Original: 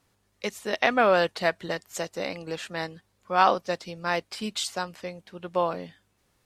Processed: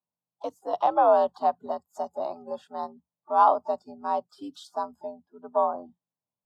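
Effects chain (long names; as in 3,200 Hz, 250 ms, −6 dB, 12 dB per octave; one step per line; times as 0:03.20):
pitch-shifted copies added +7 semitones −17 dB
drawn EQ curve 140 Hz 0 dB, 280 Hz −6 dB, 560 Hz +4 dB, 950 Hz +5 dB, 2,000 Hz −29 dB, 3,200 Hz −13 dB, 7,500 Hz −19 dB
frequency shifter +75 Hz
noise reduction from a noise print of the clip's start 25 dB
level −1.5 dB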